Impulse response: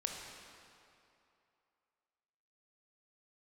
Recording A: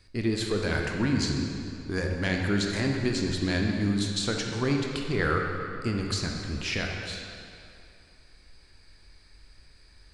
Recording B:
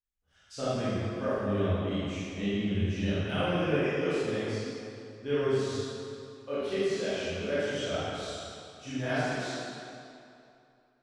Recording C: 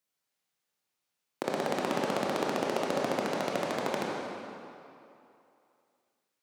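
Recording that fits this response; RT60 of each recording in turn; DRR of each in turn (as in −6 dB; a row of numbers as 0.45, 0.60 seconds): A; 2.8, 2.8, 2.8 seconds; 1.0, −13.0, −4.0 decibels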